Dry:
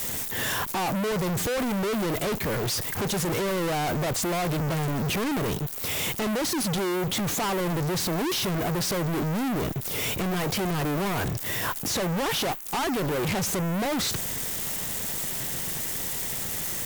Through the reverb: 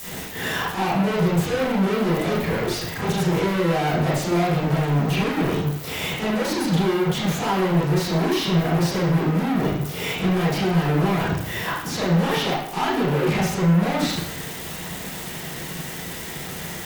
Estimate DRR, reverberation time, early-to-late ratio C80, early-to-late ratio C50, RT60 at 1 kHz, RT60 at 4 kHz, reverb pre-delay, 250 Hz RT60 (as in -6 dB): -10.0 dB, 0.70 s, 5.5 dB, 1.5 dB, 0.70 s, 0.65 s, 29 ms, 0.70 s